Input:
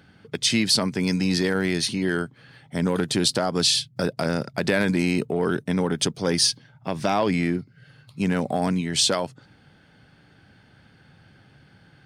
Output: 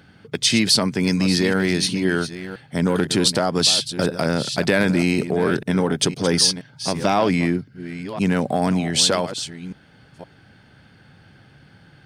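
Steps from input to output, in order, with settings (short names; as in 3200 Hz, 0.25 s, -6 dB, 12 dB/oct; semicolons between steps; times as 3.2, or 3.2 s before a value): reverse delay 0.512 s, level -12 dB; gain +3.5 dB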